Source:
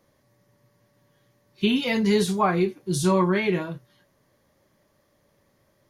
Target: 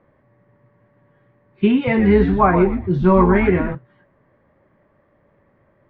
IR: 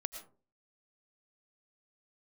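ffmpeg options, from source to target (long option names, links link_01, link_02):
-filter_complex "[0:a]lowpass=frequency=2100:width=0.5412,lowpass=frequency=2100:width=1.3066,asettb=1/sr,asplit=3[link_01][link_02][link_03];[link_01]atrim=end=1.754[link_04];[link_02]atrim=start=1.75:end=3.75,asetpts=PTS-STARTPTS,afade=type=in:duration=0.004:curve=qsin,afade=type=out:start_time=1.996:duration=0.004:curve=qsin,asplit=5[link_05][link_06][link_07][link_08][link_09];[link_06]adelay=119,afreqshift=-140,volume=-8dB[link_10];[link_07]adelay=238,afreqshift=-280,volume=-18.2dB[link_11];[link_08]adelay=357,afreqshift=-420,volume=-28.3dB[link_12];[link_09]adelay=476,afreqshift=-560,volume=-38.5dB[link_13];[link_05][link_10][link_11][link_12][link_13]amix=inputs=5:normalize=0,atrim=end_sample=88200[link_14];[link_03]atrim=start=3.746[link_15];[link_04][link_14]acrossfade=duration=0.004:curve1=hsin:curve2=qsin[link_16];[link_16][link_15]acrossfade=duration=0.004:curve1=qsin:curve2=hsin,volume=7dB"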